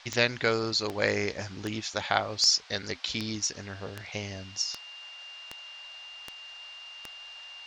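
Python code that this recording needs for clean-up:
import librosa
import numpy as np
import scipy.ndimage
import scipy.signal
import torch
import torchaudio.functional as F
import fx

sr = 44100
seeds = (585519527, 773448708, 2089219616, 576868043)

y = fx.fix_declick_ar(x, sr, threshold=10.0)
y = fx.notch(y, sr, hz=2800.0, q=30.0)
y = fx.noise_reduce(y, sr, print_start_s=7.15, print_end_s=7.65, reduce_db=29.0)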